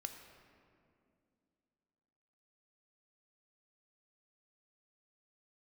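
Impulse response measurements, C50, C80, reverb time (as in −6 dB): 7.0 dB, 8.0 dB, 2.4 s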